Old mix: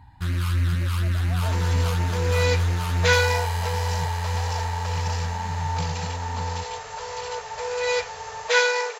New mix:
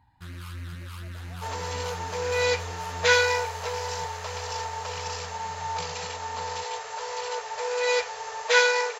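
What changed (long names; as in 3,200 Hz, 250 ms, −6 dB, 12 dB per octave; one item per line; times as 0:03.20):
speech −11.5 dB
first sound −10.5 dB
master: add low-shelf EQ 120 Hz −8 dB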